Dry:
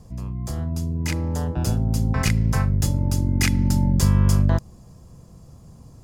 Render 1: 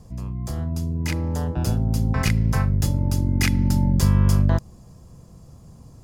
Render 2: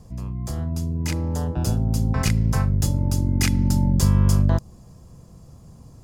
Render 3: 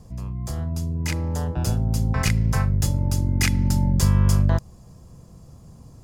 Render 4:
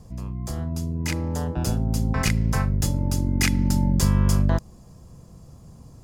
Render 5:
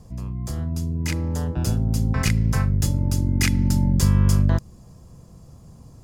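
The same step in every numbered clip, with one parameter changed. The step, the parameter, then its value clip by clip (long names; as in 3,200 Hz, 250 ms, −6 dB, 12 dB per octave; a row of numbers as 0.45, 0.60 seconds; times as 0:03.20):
dynamic equaliser, frequency: 7,500, 2,000, 270, 100, 760 Hertz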